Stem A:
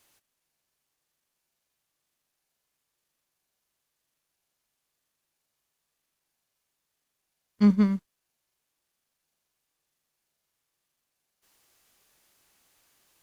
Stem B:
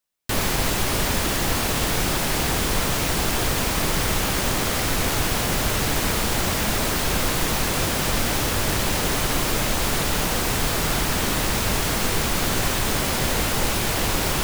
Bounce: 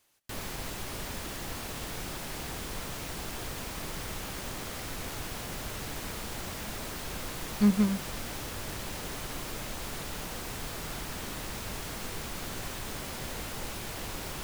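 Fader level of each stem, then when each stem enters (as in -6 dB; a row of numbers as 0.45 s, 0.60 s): -3.5 dB, -15.5 dB; 0.00 s, 0.00 s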